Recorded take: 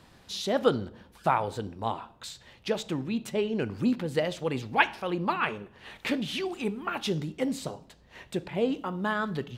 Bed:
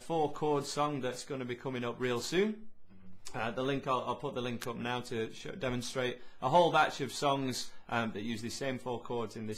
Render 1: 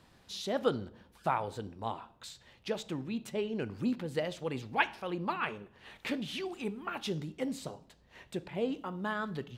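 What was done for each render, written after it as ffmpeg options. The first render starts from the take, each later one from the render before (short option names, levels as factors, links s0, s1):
-af "volume=0.501"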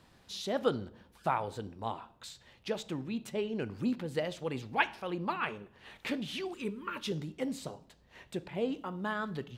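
-filter_complex "[0:a]asettb=1/sr,asplit=3[s0][s1][s2];[s0]atrim=end=6.544[s3];[s1]atrim=start=6.54:end=7.12,asetpts=PTS-STARTPTS,afade=t=in:d=0.004:c=qsin,afade=t=out:st=0.576:d=0.004:c=qsin,asuperstop=centerf=740:order=20:qfactor=2.9[s4];[s2]atrim=start=7.116[s5];[s3][s4]acrossfade=d=0.004:c1=hsin:c2=qsin[s6];[s6][s5]acrossfade=d=0.004:c1=qsin:c2=hsin"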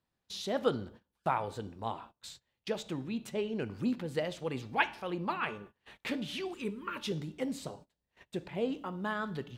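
-af "bandreject=f=292.8:t=h:w=4,bandreject=f=585.6:t=h:w=4,bandreject=f=878.4:t=h:w=4,bandreject=f=1171.2:t=h:w=4,bandreject=f=1464:t=h:w=4,bandreject=f=1756.8:t=h:w=4,bandreject=f=2049.6:t=h:w=4,bandreject=f=2342.4:t=h:w=4,bandreject=f=2635.2:t=h:w=4,bandreject=f=2928:t=h:w=4,bandreject=f=3220.8:t=h:w=4,bandreject=f=3513.6:t=h:w=4,bandreject=f=3806.4:t=h:w=4,bandreject=f=4099.2:t=h:w=4,bandreject=f=4392:t=h:w=4,bandreject=f=4684.8:t=h:w=4,bandreject=f=4977.6:t=h:w=4,bandreject=f=5270.4:t=h:w=4,bandreject=f=5563.2:t=h:w=4,bandreject=f=5856:t=h:w=4,bandreject=f=6148.8:t=h:w=4,bandreject=f=6441.6:t=h:w=4,bandreject=f=6734.4:t=h:w=4,bandreject=f=7027.2:t=h:w=4,bandreject=f=7320:t=h:w=4,bandreject=f=7612.8:t=h:w=4,bandreject=f=7905.6:t=h:w=4,bandreject=f=8198.4:t=h:w=4,bandreject=f=8491.2:t=h:w=4,bandreject=f=8784:t=h:w=4,bandreject=f=9076.8:t=h:w=4,bandreject=f=9369.6:t=h:w=4,bandreject=f=9662.4:t=h:w=4,bandreject=f=9955.2:t=h:w=4,agate=range=0.0708:threshold=0.00282:ratio=16:detection=peak"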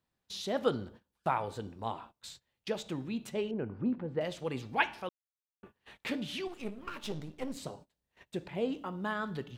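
-filter_complex "[0:a]asettb=1/sr,asplit=3[s0][s1][s2];[s0]atrim=end=3.514[s3];[s1]atrim=start=3.51:end=4.21,asetpts=PTS-STARTPTS,afade=t=in:d=0.004:c=qsin,afade=t=out:st=0.696:d=0.004:c=qsin,lowpass=1300[s4];[s2]atrim=start=4.206[s5];[s3][s4]acrossfade=d=0.004:c1=hsin:c2=qsin[s6];[s6][s5]acrossfade=d=0.004:c1=qsin:c2=hsin,asettb=1/sr,asplit=3[s7][s8][s9];[s7]atrim=end=6.474[s10];[s8]atrim=start=6.47:end=7.57,asetpts=PTS-STARTPTS,afade=t=in:d=0.004:c=qsin,afade=t=out:st=1.096:d=0.004:c=qsin,aeval=exprs='if(lt(val(0),0),0.251*val(0),val(0))':c=same[s11];[s9]atrim=start=7.566[s12];[s10][s11]acrossfade=d=0.004:c1=hsin:c2=qsin[s13];[s13][s12]acrossfade=d=0.004:c1=qsin:c2=hsin,asplit=3[s14][s15][s16];[s14]atrim=end=5.09,asetpts=PTS-STARTPTS,afade=t=out:st=5.086:d=0.004:c=hsin[s17];[s15]atrim=start=5.09:end=5.63,asetpts=PTS-STARTPTS,volume=0[s18];[s16]atrim=start=5.63,asetpts=PTS-STARTPTS,afade=t=in:d=0.004:c=hsin[s19];[s17][s18][s19]concat=n=3:v=0:a=1"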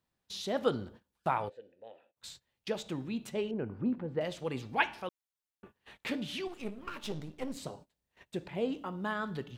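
-filter_complex "[0:a]asplit=3[s0][s1][s2];[s0]afade=t=out:st=1.48:d=0.02[s3];[s1]asplit=3[s4][s5][s6];[s4]bandpass=f=530:t=q:w=8,volume=1[s7];[s5]bandpass=f=1840:t=q:w=8,volume=0.501[s8];[s6]bandpass=f=2480:t=q:w=8,volume=0.355[s9];[s7][s8][s9]amix=inputs=3:normalize=0,afade=t=in:st=1.48:d=0.02,afade=t=out:st=2.16:d=0.02[s10];[s2]afade=t=in:st=2.16:d=0.02[s11];[s3][s10][s11]amix=inputs=3:normalize=0"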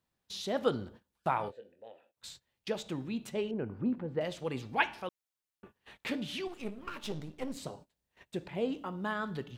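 -filter_complex "[0:a]asettb=1/sr,asplit=3[s0][s1][s2];[s0]atrim=end=1.374[s3];[s1]atrim=start=1.37:end=1.88,asetpts=PTS-STARTPTS,afade=t=in:d=0.004:c=qsin,afade=t=out:st=0.506:d=0.004:c=qsin,asplit=2[s4][s5];[s5]adelay=24,volume=0.447[s6];[s4][s6]amix=inputs=2:normalize=0,atrim=end_sample=22491[s7];[s2]atrim=start=1.876[s8];[s3][s7]acrossfade=d=0.004:c1=hsin:c2=qsin[s9];[s9][s8]acrossfade=d=0.004:c1=qsin:c2=hsin"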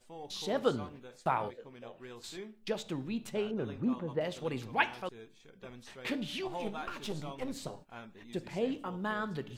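-filter_complex "[1:a]volume=0.178[s0];[0:a][s0]amix=inputs=2:normalize=0"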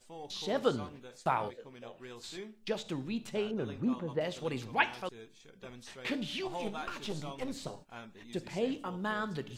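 -filter_complex "[0:a]acrossover=split=4100[s0][s1];[s1]acompressor=threshold=0.00224:ratio=4:attack=1:release=60[s2];[s0][s2]amix=inputs=2:normalize=0,equalizer=f=6500:t=o:w=1.8:g=5.5"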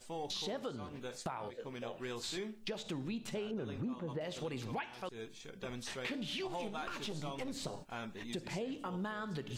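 -filter_complex "[0:a]acompressor=threshold=0.00891:ratio=16,asplit=2[s0][s1];[s1]alimiter=level_in=5.96:limit=0.0631:level=0:latency=1:release=37,volume=0.168,volume=1.06[s2];[s0][s2]amix=inputs=2:normalize=0"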